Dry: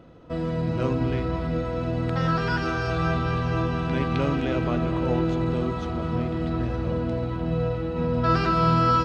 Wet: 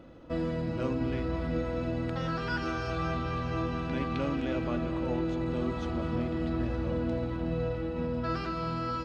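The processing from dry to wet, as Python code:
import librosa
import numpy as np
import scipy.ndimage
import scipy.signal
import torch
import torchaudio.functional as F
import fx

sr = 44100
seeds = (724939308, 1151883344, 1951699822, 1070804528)

y = fx.rider(x, sr, range_db=5, speed_s=0.5)
y = y + 0.35 * np.pad(y, (int(3.5 * sr / 1000.0), 0))[:len(y)]
y = F.gain(torch.from_numpy(y), -6.5).numpy()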